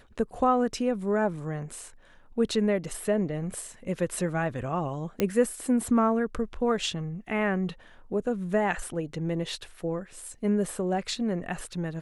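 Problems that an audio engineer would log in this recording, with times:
5.2 pop -11 dBFS

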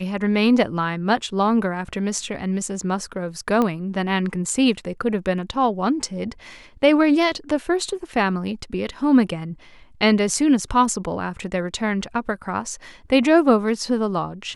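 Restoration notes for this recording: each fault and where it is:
3.62 pop -10 dBFS

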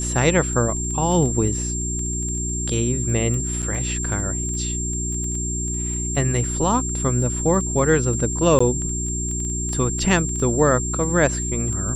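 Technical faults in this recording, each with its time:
crackle 10/s -27 dBFS
hum 60 Hz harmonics 6 -27 dBFS
tone 7400 Hz -26 dBFS
3.62–3.63 gap 6.9 ms
8.59–8.61 gap 15 ms

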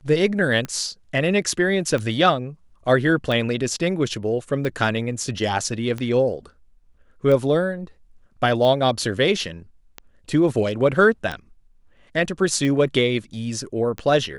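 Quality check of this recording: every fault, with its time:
tick 45 rpm -15 dBFS

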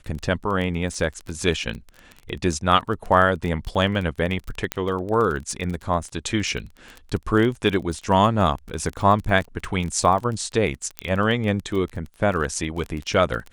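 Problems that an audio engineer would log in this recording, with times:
crackle 23/s -27 dBFS
4.72 pop -7 dBFS
10.99 pop -9 dBFS

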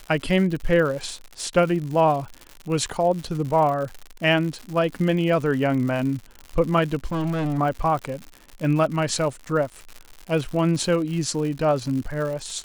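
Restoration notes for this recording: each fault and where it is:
crackle 130/s -30 dBFS
7.12–7.59 clipped -21.5 dBFS

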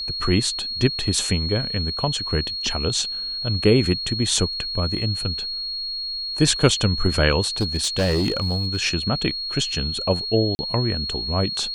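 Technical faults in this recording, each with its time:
tone 4300 Hz -26 dBFS
7.61–8.77 clipped -16.5 dBFS
10.55–10.59 gap 40 ms

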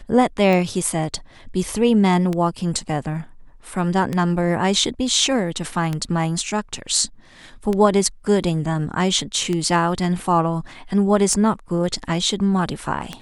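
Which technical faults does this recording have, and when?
tick 33 1/3 rpm -11 dBFS

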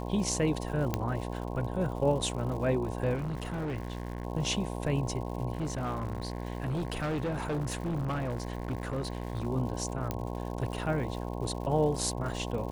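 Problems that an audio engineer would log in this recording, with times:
buzz 60 Hz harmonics 18 -36 dBFS
crackle 170/s -40 dBFS
0.94 pop -14 dBFS
3.15–4.25 clipped -30.5 dBFS
5.53–9.47 clipped -28.5 dBFS
10.11 pop -17 dBFS

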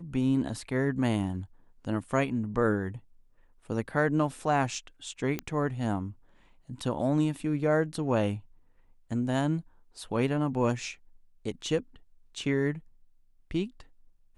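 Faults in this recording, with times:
5.39 pop -16 dBFS

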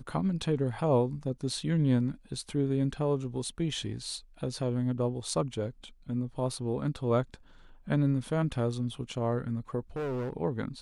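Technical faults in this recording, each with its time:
9.96–10.33 clipped -30.5 dBFS

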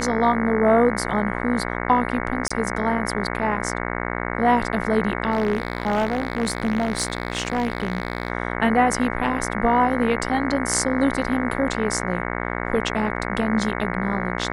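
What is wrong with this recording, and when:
buzz 60 Hz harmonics 37 -27 dBFS
2.48–2.5 gap 25 ms
5.31–8.3 clipped -16 dBFS

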